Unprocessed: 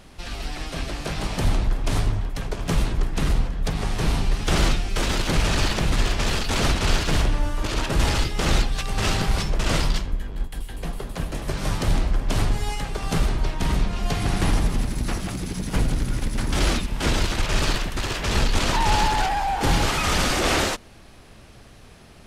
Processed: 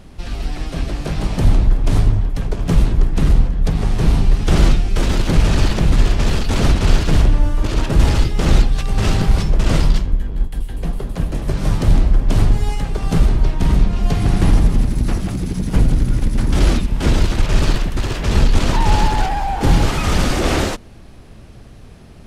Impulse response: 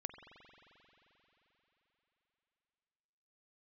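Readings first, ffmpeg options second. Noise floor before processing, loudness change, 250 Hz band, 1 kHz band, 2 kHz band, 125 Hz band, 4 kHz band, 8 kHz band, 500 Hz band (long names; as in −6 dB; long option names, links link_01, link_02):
−46 dBFS, +6.5 dB, +7.0 dB, +1.5 dB, −0.5 dB, +8.5 dB, −1.0 dB, −1.0 dB, +4.0 dB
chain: -af "lowshelf=frequency=500:gain=10,volume=-1dB"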